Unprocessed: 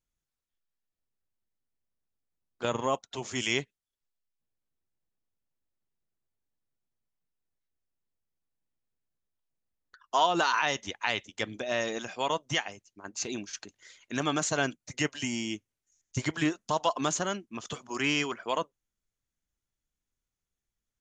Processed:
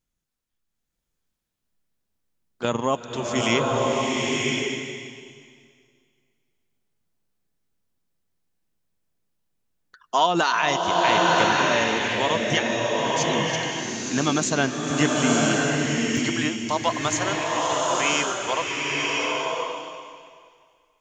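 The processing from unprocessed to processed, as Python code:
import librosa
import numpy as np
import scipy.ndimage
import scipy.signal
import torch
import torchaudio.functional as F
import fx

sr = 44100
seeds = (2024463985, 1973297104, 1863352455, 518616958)

y = fx.peak_eq(x, sr, hz=200.0, db=fx.steps((0.0, 5.0), (16.17, -12.5)), octaves=1.2)
y = fx.rev_bloom(y, sr, seeds[0], attack_ms=1040, drr_db=-3.0)
y = y * librosa.db_to_amplitude(4.5)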